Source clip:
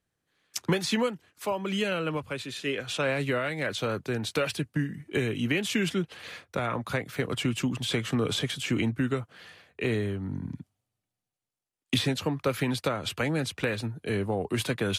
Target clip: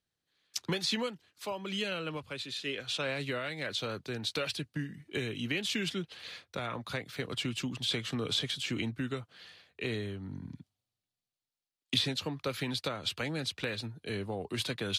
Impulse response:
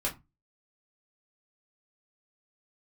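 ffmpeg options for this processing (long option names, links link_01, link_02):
-af "equalizer=frequency=4100:width_type=o:width=1.1:gain=10,volume=-8dB"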